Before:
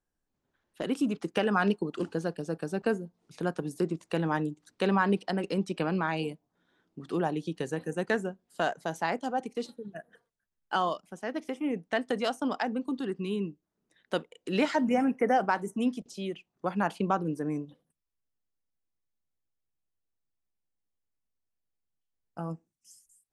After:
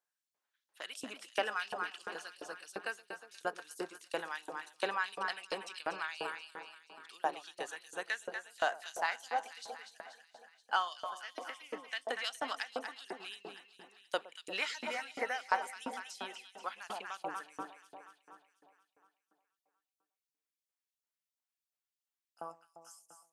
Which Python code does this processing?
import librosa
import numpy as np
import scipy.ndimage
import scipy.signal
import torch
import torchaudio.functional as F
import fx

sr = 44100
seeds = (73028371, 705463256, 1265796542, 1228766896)

y = fx.echo_alternate(x, sr, ms=120, hz=820.0, feedback_pct=78, wet_db=-6.5)
y = fx.filter_lfo_highpass(y, sr, shape='saw_up', hz=2.9, low_hz=600.0, high_hz=5300.0, q=0.96)
y = F.gain(torch.from_numpy(y), -1.5).numpy()